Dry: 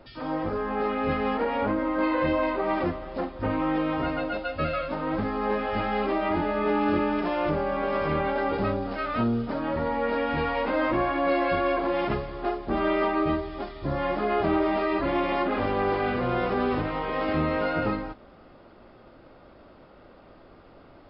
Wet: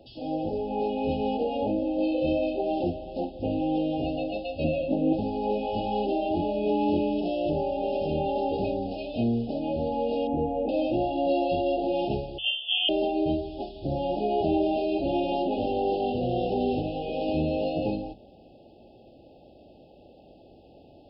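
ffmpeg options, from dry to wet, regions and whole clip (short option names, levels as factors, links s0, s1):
-filter_complex "[0:a]asettb=1/sr,asplit=3[s0][s1][s2];[s0]atrim=end=4.644[s3];[s1]atrim=start=4.64:end=5.13,asetpts=PTS-STARTPTS,afade=t=in:d=0.004:c=qsin,afade=t=out:st=0.486:d=0.004:c=qsin,lowpass=3200,equalizer=f=260:w=0.84:g=9.5[s4];[s2]atrim=start=5.126[s5];[s3][s4]acrossfade=d=0.004:c1=hsin:c2=qsin[s6];[s6][s5]acrossfade=d=0.004:c1=qsin:c2=hsin,asettb=1/sr,asplit=3[s7][s8][s9];[s7]atrim=end=10.274[s10];[s8]atrim=start=10.27:end=10.69,asetpts=PTS-STARTPTS,afade=t=in:d=0.004:c=qsin,afade=t=out:st=0.416:d=0.004:c=qsin,lowpass=1100,equalizer=f=320:w=2.1:g=5[s11];[s9]atrim=start=10.686[s12];[s10][s11]acrossfade=d=0.004:c1=hsin:c2=qsin[s13];[s13][s12]acrossfade=d=0.004:c1=qsin:c2=hsin,asettb=1/sr,asplit=3[s14][s15][s16];[s14]atrim=end=12.384[s17];[s15]atrim=start=12.38:end=12.89,asetpts=PTS-STARTPTS,afade=t=in:d=0.004:c=qsin,afade=t=out:st=0.506:d=0.004:c=qsin,lowpass=f=3000:t=q:w=0.5098,lowpass=f=3000:t=q:w=0.6013,lowpass=f=3000:t=q:w=0.9,lowpass=f=3000:t=q:w=2.563,afreqshift=-3500,lowshelf=f=330:t=q:w=1.5:g=-13[s18];[s16]atrim=start=12.886[s19];[s17][s18]acrossfade=d=0.004:c1=hsin:c2=qsin[s20];[s20][s19]acrossfade=d=0.004:c1=qsin:c2=hsin,highpass=43,bandreject=f=50:t=h:w=6,bandreject=f=100:t=h:w=6,bandreject=f=150:t=h:w=6,bandreject=f=200:t=h:w=6,afftfilt=real='re*(1-between(b*sr/4096,870,2500))':imag='im*(1-between(b*sr/4096,870,2500))':win_size=4096:overlap=0.75"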